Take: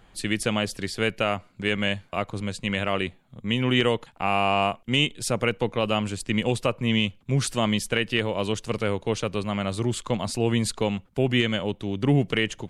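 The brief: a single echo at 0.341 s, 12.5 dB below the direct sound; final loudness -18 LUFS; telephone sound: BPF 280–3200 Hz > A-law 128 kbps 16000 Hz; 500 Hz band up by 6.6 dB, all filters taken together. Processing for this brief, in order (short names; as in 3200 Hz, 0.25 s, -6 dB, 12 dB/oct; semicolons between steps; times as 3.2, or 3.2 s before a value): BPF 280–3200 Hz; bell 500 Hz +8.5 dB; echo 0.341 s -12.5 dB; gain +5.5 dB; A-law 128 kbps 16000 Hz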